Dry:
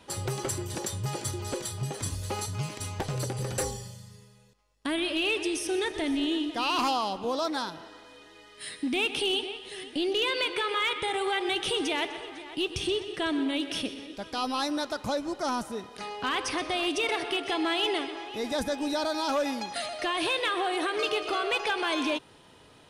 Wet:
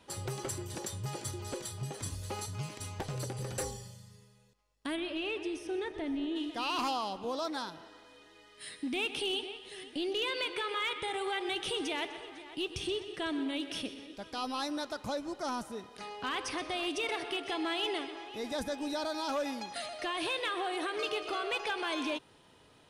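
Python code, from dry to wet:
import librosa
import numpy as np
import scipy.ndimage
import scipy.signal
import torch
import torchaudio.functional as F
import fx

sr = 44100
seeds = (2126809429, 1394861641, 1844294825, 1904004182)

y = fx.lowpass(x, sr, hz=fx.line((4.95, 2500.0), (6.35, 1200.0)), slope=6, at=(4.95, 6.35), fade=0.02)
y = y * librosa.db_to_amplitude(-6.0)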